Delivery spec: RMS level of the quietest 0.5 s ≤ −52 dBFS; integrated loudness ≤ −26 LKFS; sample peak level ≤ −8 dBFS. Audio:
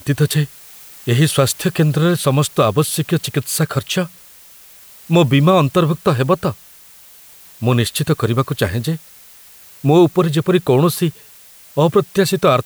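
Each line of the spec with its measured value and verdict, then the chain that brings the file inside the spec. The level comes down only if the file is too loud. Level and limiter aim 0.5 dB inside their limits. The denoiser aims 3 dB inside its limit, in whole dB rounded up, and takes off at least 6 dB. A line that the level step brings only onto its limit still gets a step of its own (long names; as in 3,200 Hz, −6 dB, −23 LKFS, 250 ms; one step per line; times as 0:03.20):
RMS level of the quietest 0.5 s −43 dBFS: out of spec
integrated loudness −16.5 LKFS: out of spec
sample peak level −3.0 dBFS: out of spec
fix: level −10 dB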